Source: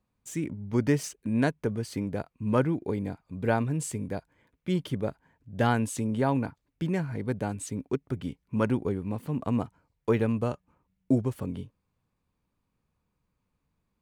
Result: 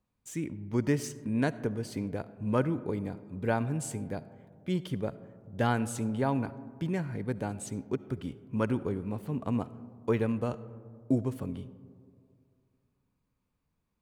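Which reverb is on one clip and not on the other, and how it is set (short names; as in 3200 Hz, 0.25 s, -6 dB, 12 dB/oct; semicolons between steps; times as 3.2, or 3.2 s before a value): digital reverb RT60 2.2 s, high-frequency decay 0.25×, pre-delay 30 ms, DRR 16 dB; gain -3 dB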